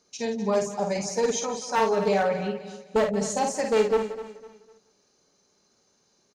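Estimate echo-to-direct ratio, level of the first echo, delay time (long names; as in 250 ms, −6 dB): −4.0 dB, −5.5 dB, 51 ms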